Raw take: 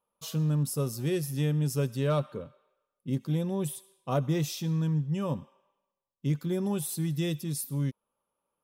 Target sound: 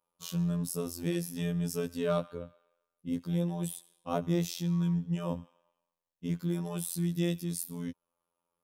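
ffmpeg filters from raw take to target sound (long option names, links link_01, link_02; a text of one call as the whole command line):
ffmpeg -i in.wav -af "afftfilt=real='hypot(re,im)*cos(PI*b)':imag='0':win_size=2048:overlap=0.75,volume=1dB" out.wav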